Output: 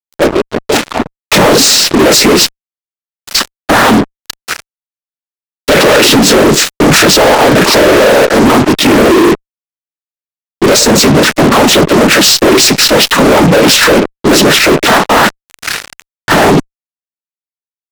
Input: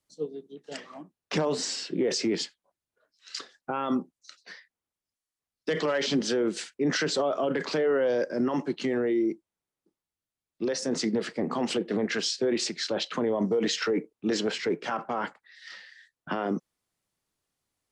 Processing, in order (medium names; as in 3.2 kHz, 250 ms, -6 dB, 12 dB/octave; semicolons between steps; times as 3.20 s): noise-vocoded speech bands 12; fuzz box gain 43 dB, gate -44 dBFS; trim +9 dB